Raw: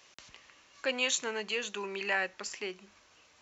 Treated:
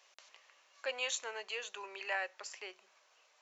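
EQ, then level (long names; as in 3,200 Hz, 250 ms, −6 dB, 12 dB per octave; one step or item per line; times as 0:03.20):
four-pole ladder high-pass 460 Hz, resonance 30%
0.0 dB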